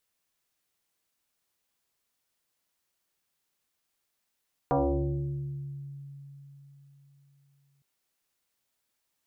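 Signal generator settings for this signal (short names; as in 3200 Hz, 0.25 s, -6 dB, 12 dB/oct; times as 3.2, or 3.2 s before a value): FM tone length 3.11 s, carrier 140 Hz, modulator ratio 1.49, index 4.4, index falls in 1.81 s exponential, decay 4.04 s, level -21 dB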